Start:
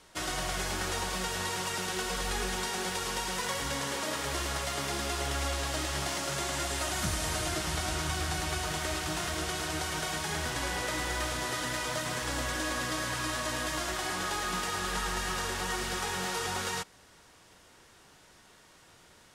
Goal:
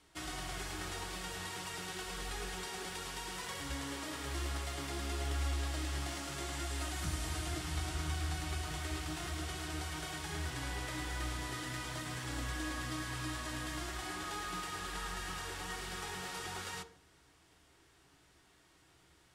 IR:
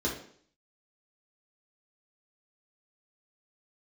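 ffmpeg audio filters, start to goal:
-filter_complex "[0:a]asplit=2[a][b];[1:a]atrim=start_sample=2205,lowshelf=f=110:g=7.5[c];[b][c]afir=irnorm=-1:irlink=0,volume=-15.5dB[d];[a][d]amix=inputs=2:normalize=0,volume=-8.5dB"

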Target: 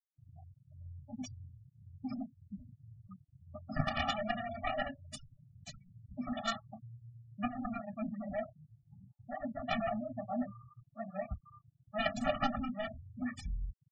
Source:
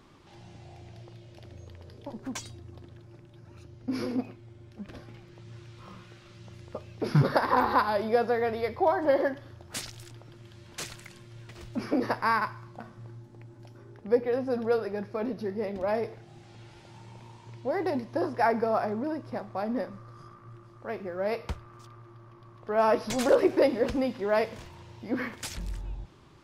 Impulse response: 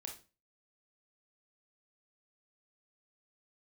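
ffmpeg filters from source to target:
-filter_complex "[0:a]flanger=delay=20:depth=4.7:speed=0.18,aeval=exprs='0.266*(cos(1*acos(clip(val(0)/0.266,-1,1)))-cos(1*PI/2))+0.0422*(cos(2*acos(clip(val(0)/0.266,-1,1)))-cos(2*PI/2))+0.0299*(cos(3*acos(clip(val(0)/0.266,-1,1)))-cos(3*PI/2))+0.00841*(cos(4*acos(clip(val(0)/0.266,-1,1)))-cos(4*PI/2))+0.0668*(cos(7*acos(clip(val(0)/0.266,-1,1)))-cos(7*PI/2))':c=same,asplit=2[a][b];[1:a]atrim=start_sample=2205,atrim=end_sample=3969[c];[b][c]afir=irnorm=-1:irlink=0,volume=4.5dB[d];[a][d]amix=inputs=2:normalize=0,afftfilt=real='re*gte(hypot(re,im),0.0282)':imag='im*gte(hypot(re,im),0.0282)':win_size=1024:overlap=0.75,atempo=1.9,afftfilt=real='re*eq(mod(floor(b*sr/1024/280),2),0)':imag='im*eq(mod(floor(b*sr/1024/280),2),0)':win_size=1024:overlap=0.75,volume=-5dB"

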